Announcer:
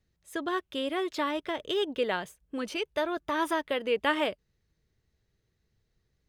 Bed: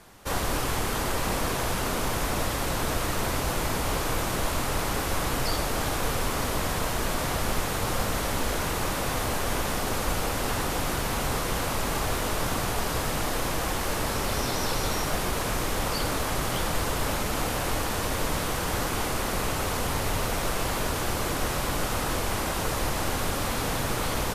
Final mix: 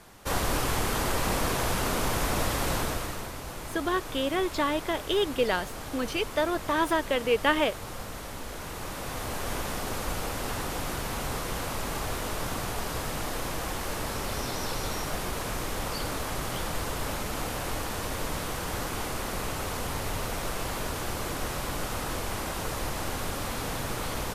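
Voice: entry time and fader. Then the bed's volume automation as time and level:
3.40 s, +3.0 dB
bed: 2.75 s 0 dB
3.33 s -11 dB
8.48 s -11 dB
9.49 s -4.5 dB

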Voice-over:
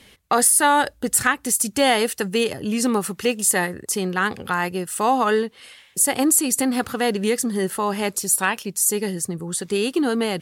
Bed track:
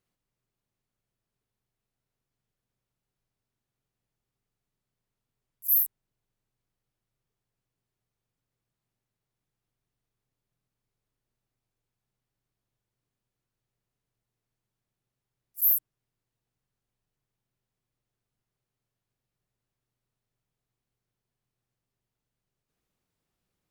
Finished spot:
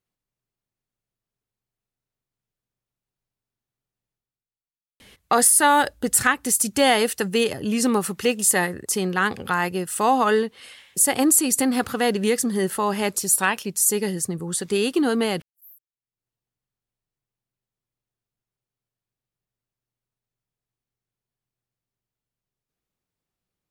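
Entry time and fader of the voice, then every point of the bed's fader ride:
5.00 s, 0.0 dB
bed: 4.11 s -3 dB
4.83 s -26.5 dB
15.86 s -26.5 dB
16.26 s -4 dB

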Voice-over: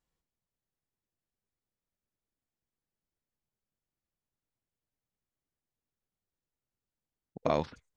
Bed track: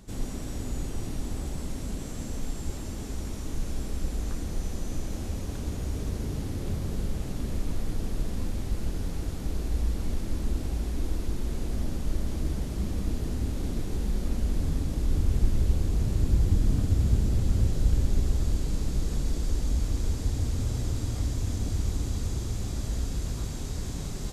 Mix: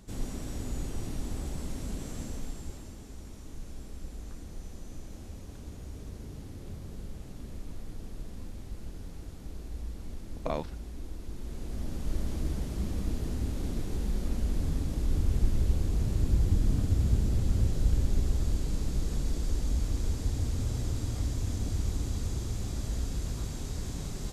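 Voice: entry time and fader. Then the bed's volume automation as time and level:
3.00 s, -4.5 dB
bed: 2.19 s -2.5 dB
3.04 s -11 dB
11.18 s -11 dB
12.18 s -2.5 dB

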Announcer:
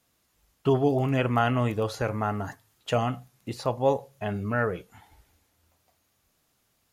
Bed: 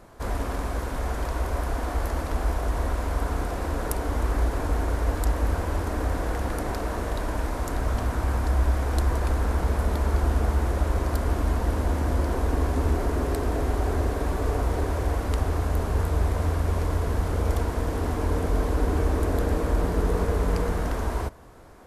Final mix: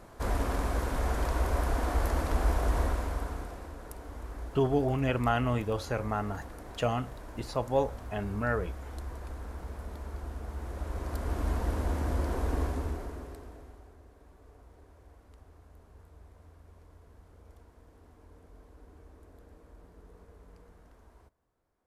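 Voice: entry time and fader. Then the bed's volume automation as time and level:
3.90 s, -4.0 dB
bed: 2.80 s -1.5 dB
3.76 s -16.5 dB
10.43 s -16.5 dB
11.49 s -6 dB
12.62 s -6 dB
13.97 s -30.5 dB

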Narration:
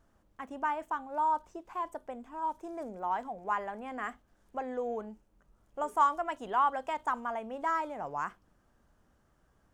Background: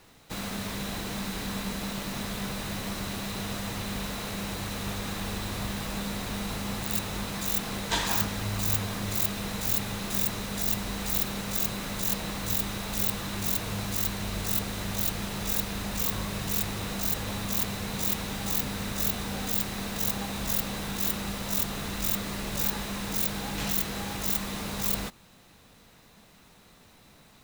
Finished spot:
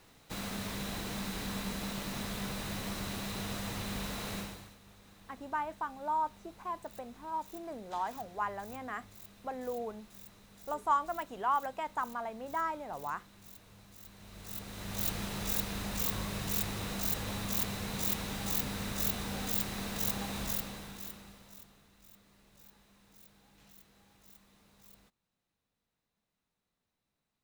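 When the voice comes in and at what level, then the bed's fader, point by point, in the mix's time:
4.90 s, -3.0 dB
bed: 4.38 s -4.5 dB
4.79 s -25 dB
13.99 s -25 dB
15.08 s -4.5 dB
20.41 s -4.5 dB
21.89 s -30.5 dB

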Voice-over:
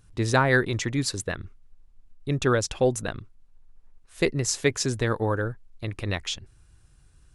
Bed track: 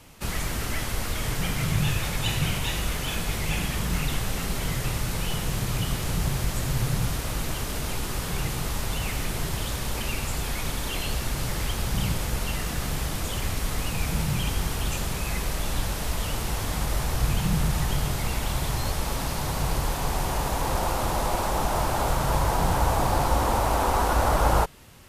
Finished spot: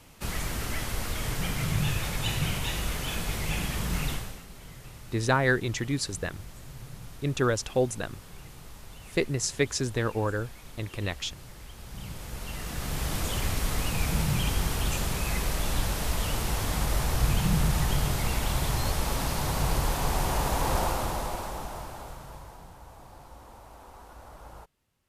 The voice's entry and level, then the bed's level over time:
4.95 s, -3.0 dB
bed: 4.10 s -3 dB
4.45 s -18 dB
11.70 s -18 dB
13.15 s -0.5 dB
20.79 s -0.5 dB
22.75 s -26 dB

